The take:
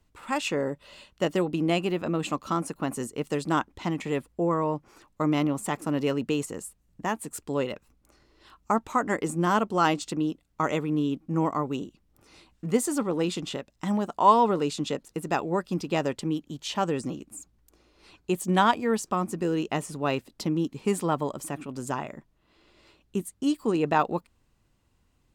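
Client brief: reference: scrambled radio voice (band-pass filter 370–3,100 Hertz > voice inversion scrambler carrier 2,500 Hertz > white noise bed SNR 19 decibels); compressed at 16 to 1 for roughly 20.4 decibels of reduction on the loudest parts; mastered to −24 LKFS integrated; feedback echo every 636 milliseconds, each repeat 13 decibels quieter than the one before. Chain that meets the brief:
downward compressor 16 to 1, threshold −33 dBFS
band-pass filter 370–3,100 Hz
repeating echo 636 ms, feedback 22%, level −13 dB
voice inversion scrambler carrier 2,500 Hz
white noise bed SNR 19 dB
level +16 dB

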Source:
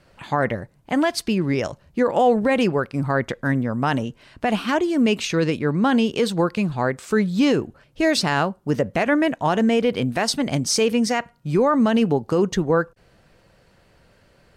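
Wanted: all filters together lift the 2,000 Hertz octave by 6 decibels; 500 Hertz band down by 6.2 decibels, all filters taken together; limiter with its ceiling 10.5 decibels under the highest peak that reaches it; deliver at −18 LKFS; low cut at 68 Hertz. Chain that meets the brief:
high-pass filter 68 Hz
parametric band 500 Hz −8 dB
parametric band 2,000 Hz +8 dB
level +7 dB
brickwall limiter −8.5 dBFS

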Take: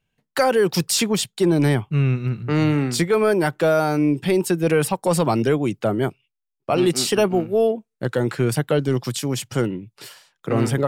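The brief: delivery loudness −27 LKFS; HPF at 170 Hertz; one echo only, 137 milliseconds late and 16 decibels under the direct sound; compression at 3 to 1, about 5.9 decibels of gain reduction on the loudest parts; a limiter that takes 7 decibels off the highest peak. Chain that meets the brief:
high-pass filter 170 Hz
downward compressor 3 to 1, threshold −22 dBFS
brickwall limiter −17.5 dBFS
single-tap delay 137 ms −16 dB
level +0.5 dB

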